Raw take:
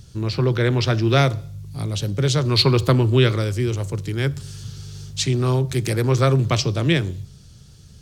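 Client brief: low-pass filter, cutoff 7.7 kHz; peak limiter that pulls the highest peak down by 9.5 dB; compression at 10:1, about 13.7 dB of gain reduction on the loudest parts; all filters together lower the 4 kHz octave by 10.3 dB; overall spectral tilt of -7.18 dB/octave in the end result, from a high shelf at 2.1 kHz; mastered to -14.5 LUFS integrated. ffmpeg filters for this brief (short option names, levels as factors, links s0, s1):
-af "lowpass=7700,highshelf=f=2100:g=-6,equalizer=f=4000:t=o:g=-6.5,acompressor=threshold=0.0501:ratio=10,volume=8.91,alimiter=limit=0.501:level=0:latency=1"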